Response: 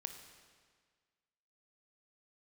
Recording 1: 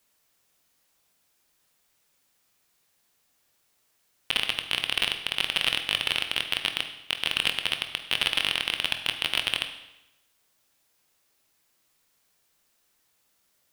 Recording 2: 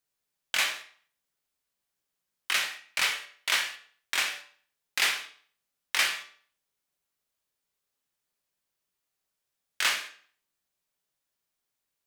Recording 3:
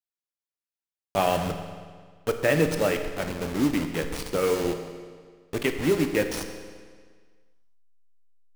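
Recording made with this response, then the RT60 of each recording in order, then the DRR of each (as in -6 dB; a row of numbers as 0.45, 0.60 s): 3; 0.90, 0.50, 1.7 s; 6.0, 4.0, 6.0 dB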